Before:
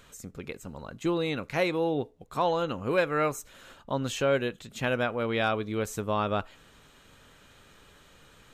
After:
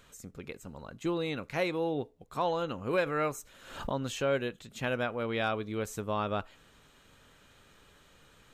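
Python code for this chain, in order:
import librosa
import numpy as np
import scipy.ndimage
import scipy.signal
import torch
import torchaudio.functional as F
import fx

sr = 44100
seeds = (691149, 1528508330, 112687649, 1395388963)

y = fx.pre_swell(x, sr, db_per_s=75.0, at=(2.93, 4.04))
y = F.gain(torch.from_numpy(y), -4.0).numpy()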